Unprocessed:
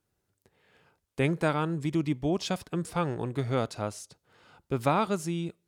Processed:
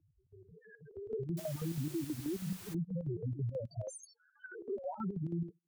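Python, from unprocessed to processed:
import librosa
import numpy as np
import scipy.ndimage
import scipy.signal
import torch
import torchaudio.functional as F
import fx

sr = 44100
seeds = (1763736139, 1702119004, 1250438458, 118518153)

y = fx.spec_swells(x, sr, rise_s=0.49)
y = fx.tilt_eq(y, sr, slope=3.5, at=(3.87, 4.97))
y = fx.level_steps(y, sr, step_db=18)
y = fx.spec_topn(y, sr, count=2)
y = fx.chopper(y, sr, hz=6.2, depth_pct=65, duty_pct=65)
y = fx.dmg_noise_colour(y, sr, seeds[0], colour='white', level_db=-57.0, at=(1.37, 2.73), fade=0.02)
y = fx.band_squash(y, sr, depth_pct=70)
y = y * 10.0 ** (5.5 / 20.0)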